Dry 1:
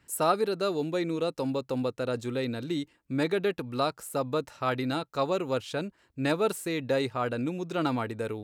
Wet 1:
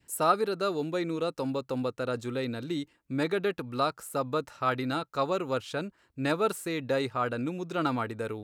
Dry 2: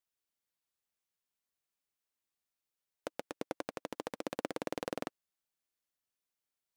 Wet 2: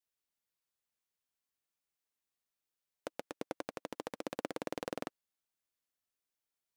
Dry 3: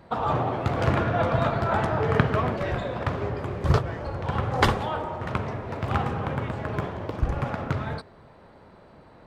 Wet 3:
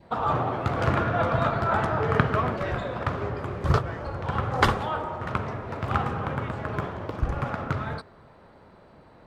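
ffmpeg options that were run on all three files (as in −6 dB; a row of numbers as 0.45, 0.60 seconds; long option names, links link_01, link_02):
-af "adynamicequalizer=threshold=0.00631:dfrequency=1300:dqfactor=2.5:tfrequency=1300:tqfactor=2.5:attack=5:release=100:ratio=0.375:range=2.5:mode=boostabove:tftype=bell,volume=-1.5dB"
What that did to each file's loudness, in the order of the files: −0.5, −1.5, −0.5 LU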